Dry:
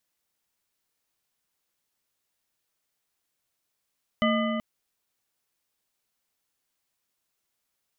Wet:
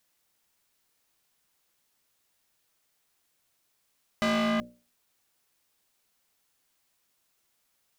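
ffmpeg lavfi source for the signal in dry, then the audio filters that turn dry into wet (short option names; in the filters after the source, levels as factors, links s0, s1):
-f lavfi -i "aevalsrc='0.075*pow(10,-3*t/3.68)*sin(2*PI*225*t)+0.0596*pow(10,-3*t/2.715)*sin(2*PI*620.3*t)+0.0473*pow(10,-3*t/2.218)*sin(2*PI*1215.9*t)+0.0376*pow(10,-3*t/1.908)*sin(2*PI*2009.9*t)+0.0299*pow(10,-3*t/1.692)*sin(2*PI*3001.5*t)':d=0.38:s=44100"
-filter_complex "[0:a]bandreject=f=60:t=h:w=6,bandreject=f=120:t=h:w=6,bandreject=f=180:t=h:w=6,bandreject=f=240:t=h:w=6,bandreject=f=300:t=h:w=6,bandreject=f=360:t=h:w=6,bandreject=f=420:t=h:w=6,bandreject=f=480:t=h:w=6,bandreject=f=540:t=h:w=6,bandreject=f=600:t=h:w=6,asplit=2[s0][s1];[s1]alimiter=limit=0.0841:level=0:latency=1,volume=1.06[s2];[s0][s2]amix=inputs=2:normalize=0,asoftclip=type=hard:threshold=0.0631"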